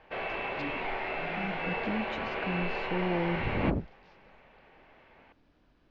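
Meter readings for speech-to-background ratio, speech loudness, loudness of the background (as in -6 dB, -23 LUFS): -1.0 dB, -35.0 LUFS, -34.0 LUFS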